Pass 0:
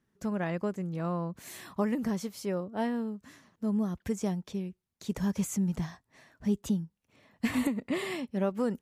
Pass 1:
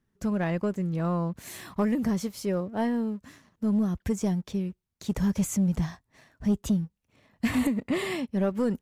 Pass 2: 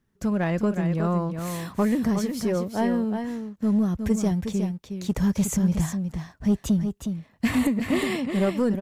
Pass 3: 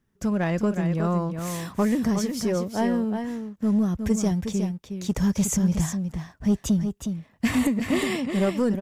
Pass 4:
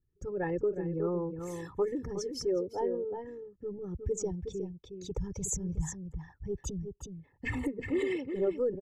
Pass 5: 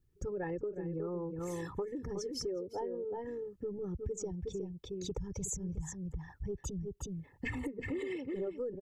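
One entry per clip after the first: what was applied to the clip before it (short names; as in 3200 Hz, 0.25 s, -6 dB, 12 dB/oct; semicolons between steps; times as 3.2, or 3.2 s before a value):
low shelf 86 Hz +11.5 dB; sample leveller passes 1
echo 0.364 s -7 dB; gain +3 dB
notch 4200 Hz, Q 15; dynamic EQ 5900 Hz, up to +5 dB, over -51 dBFS, Q 1.2
formant sharpening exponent 2; comb 2.3 ms, depth 97%; gain -8.5 dB
compressor 5:1, threshold -42 dBFS, peak gain reduction 15.5 dB; gain +5.5 dB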